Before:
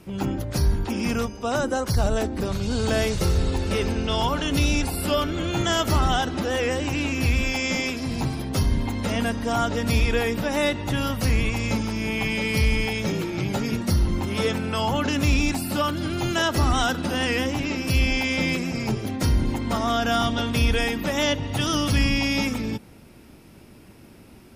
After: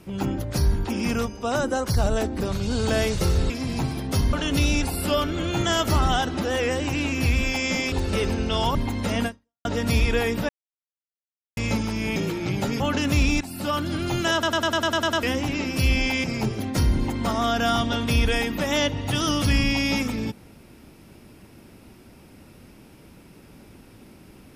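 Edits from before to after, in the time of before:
0:03.50–0:04.33: swap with 0:07.92–0:08.75
0:09.26–0:09.65: fade out exponential
0:10.49–0:11.57: silence
0:12.16–0:13.08: remove
0:13.72–0:14.91: remove
0:15.52–0:15.92: fade in, from −12.5 dB
0:16.44: stutter in place 0.10 s, 9 plays
0:18.35–0:18.70: remove

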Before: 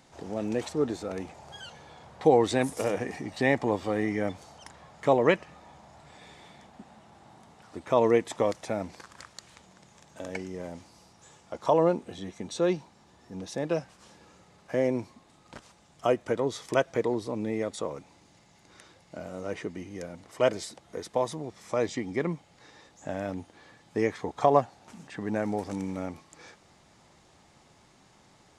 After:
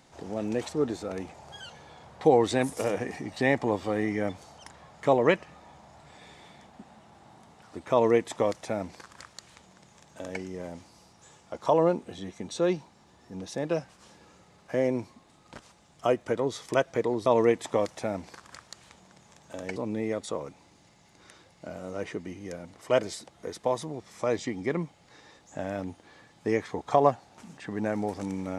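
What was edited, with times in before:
0:07.92–0:10.42: duplicate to 0:17.26

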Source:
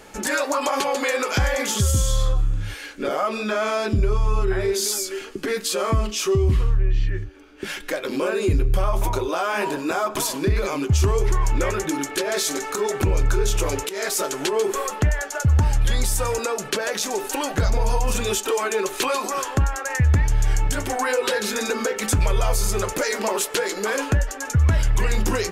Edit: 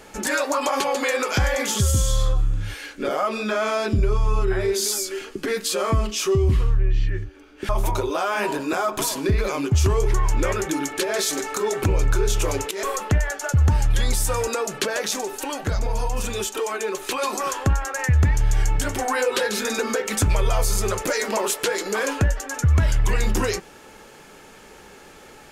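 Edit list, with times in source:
0:07.69–0:08.87: remove
0:14.01–0:14.74: remove
0:17.12–0:19.13: clip gain −3.5 dB

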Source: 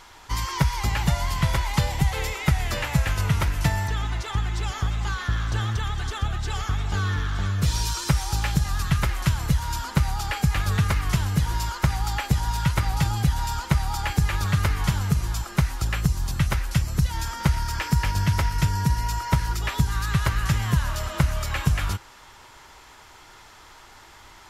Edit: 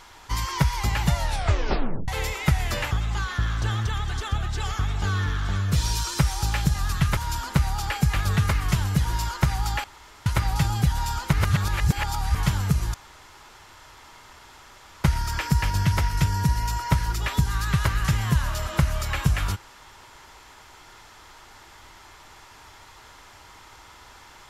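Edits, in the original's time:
0:01.16: tape stop 0.92 s
0:02.91–0:04.81: remove
0:09.07–0:09.58: remove
0:12.25–0:12.67: fill with room tone
0:13.74–0:14.76: reverse
0:15.35–0:17.45: fill with room tone

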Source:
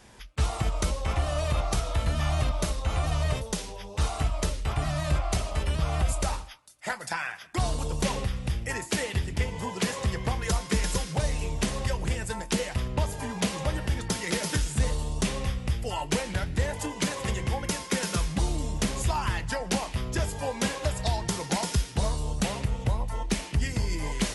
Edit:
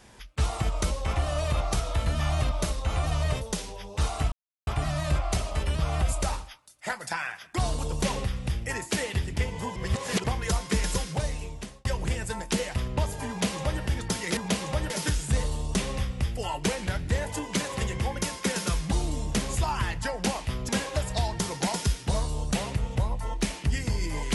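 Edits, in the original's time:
0:04.32–0:04.67: silence
0:09.76–0:10.24: reverse
0:11.07–0:11.85: fade out
0:13.29–0:13.82: duplicate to 0:14.37
0:20.16–0:20.58: remove

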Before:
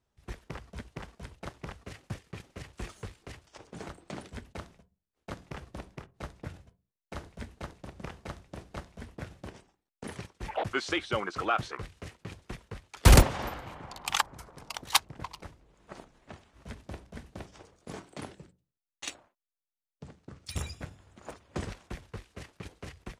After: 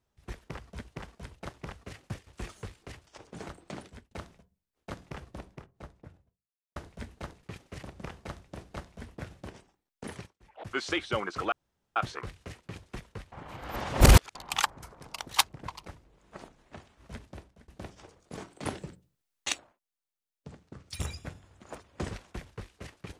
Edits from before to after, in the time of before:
0:02.27–0:02.67: move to 0:07.83
0:04.03–0:04.51: fade out equal-power
0:05.43–0:07.16: fade out and dull
0:10.06–0:10.88: duck −21 dB, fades 0.30 s equal-power
0:11.52: splice in room tone 0.44 s
0:12.88–0:13.91: reverse
0:16.72–0:17.24: fade out, to −22.5 dB
0:18.21–0:19.08: clip gain +8.5 dB

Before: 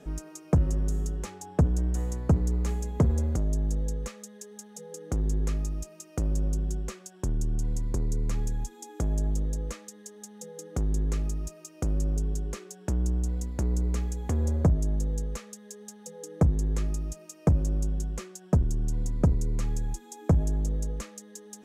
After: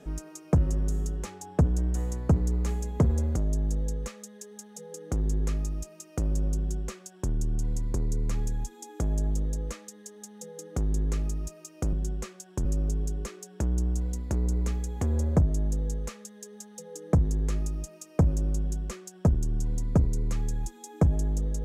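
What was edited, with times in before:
0:06.59–0:07.31: duplicate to 0:11.93

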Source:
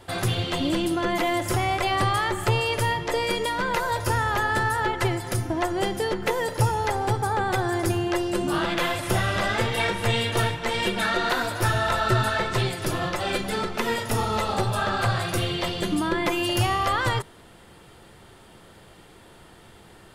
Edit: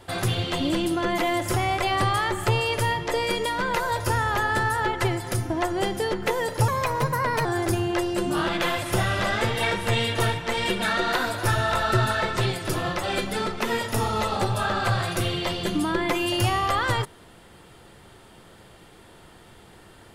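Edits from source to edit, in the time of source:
0:06.68–0:07.62: play speed 122%

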